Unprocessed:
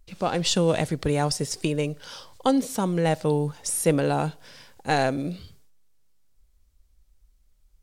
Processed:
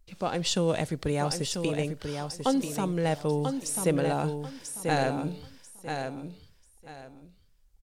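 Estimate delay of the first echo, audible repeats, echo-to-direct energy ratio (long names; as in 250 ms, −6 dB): 990 ms, 3, −6.0 dB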